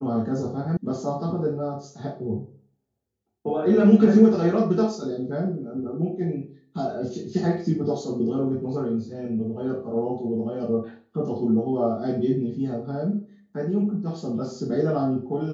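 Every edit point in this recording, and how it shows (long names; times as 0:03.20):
0:00.77: cut off before it has died away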